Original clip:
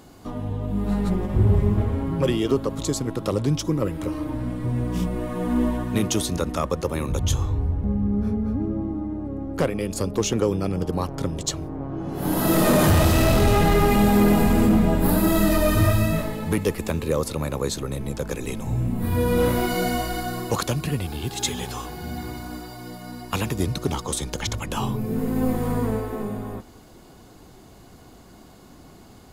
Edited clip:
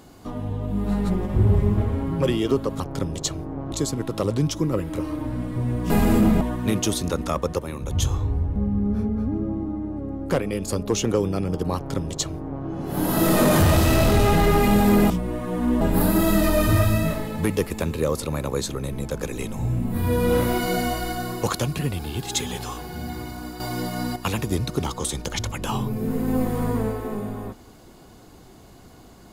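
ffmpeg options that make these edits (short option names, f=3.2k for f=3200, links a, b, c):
-filter_complex "[0:a]asplit=11[a][b][c][d][e][f][g][h][i][j][k];[a]atrim=end=2.802[l];[b]atrim=start=11.028:end=11.952[m];[c]atrim=start=2.798:end=4.982[n];[d]atrim=start=14.378:end=14.892[o];[e]atrim=start=5.688:end=6.872[p];[f]atrim=start=6.868:end=7.192,asetpts=PTS-STARTPTS,volume=-5.5dB[q];[g]atrim=start=7.188:end=14.382[r];[h]atrim=start=4.978:end=5.692[s];[i]atrim=start=14.888:end=22.682[t];[j]atrim=start=22.678:end=23.242,asetpts=PTS-STARTPTS,volume=9.5dB[u];[k]atrim=start=23.238[v];[l][m]acrossfade=d=0.004:c1=hsin:c2=hsin[w];[w][n]acrossfade=d=0.004:c1=hsin:c2=hsin[x];[x][o]acrossfade=d=0.004:c1=hsin:c2=hsin[y];[y][p]acrossfade=d=0.004:c1=hsin:c2=hsin[z];[z][q]acrossfade=d=0.004:c1=hsin:c2=hsin[aa];[aa][r]acrossfade=d=0.004:c1=hsin:c2=hsin[ab];[ab][s]acrossfade=d=0.004:c1=hsin:c2=hsin[ac];[ac][t]acrossfade=d=0.004:c1=hsin:c2=hsin[ad];[ad][u]acrossfade=d=0.004:c1=hsin:c2=hsin[ae];[ae][v]acrossfade=d=0.004:c1=hsin:c2=hsin"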